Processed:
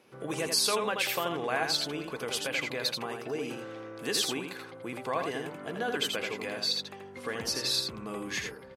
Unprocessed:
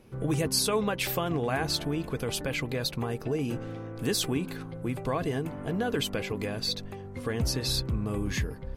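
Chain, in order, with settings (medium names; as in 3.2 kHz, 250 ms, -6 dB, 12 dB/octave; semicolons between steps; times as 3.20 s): frequency weighting A; on a send: delay 82 ms -5 dB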